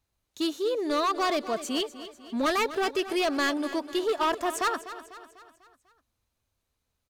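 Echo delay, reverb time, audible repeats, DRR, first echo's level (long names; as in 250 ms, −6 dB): 248 ms, no reverb audible, 4, no reverb audible, −14.0 dB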